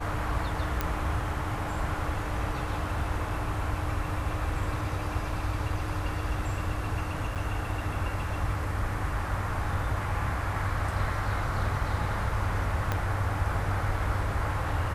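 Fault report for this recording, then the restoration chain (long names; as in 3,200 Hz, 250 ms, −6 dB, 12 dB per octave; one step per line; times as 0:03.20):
0:00.81: click −13 dBFS
0:07.35–0:07.36: drop-out 7.9 ms
0:12.92: click −14 dBFS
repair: click removal
repair the gap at 0:07.35, 7.9 ms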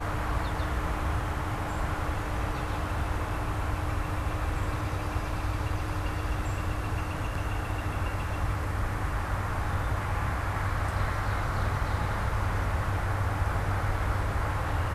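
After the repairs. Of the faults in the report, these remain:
0:12.92: click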